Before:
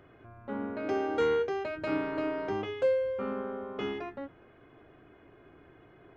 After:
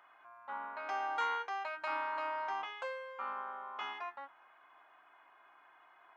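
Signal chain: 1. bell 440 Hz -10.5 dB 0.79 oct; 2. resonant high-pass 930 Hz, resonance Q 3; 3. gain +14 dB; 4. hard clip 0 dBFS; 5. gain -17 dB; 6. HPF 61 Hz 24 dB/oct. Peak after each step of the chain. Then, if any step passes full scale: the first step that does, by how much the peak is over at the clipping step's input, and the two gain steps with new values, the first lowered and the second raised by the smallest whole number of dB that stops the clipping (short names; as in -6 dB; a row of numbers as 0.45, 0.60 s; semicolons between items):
-22.0, -19.5, -5.5, -5.5, -22.5, -22.0 dBFS; no overload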